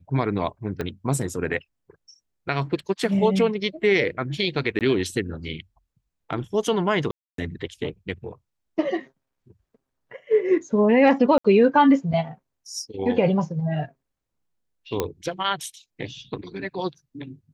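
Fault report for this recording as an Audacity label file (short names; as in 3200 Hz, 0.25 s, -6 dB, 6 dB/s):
0.810000	0.810000	pop -15 dBFS
4.790000	4.810000	gap 18 ms
7.110000	7.380000	gap 0.273 s
11.380000	11.450000	gap 65 ms
15.000000	15.000000	pop -9 dBFS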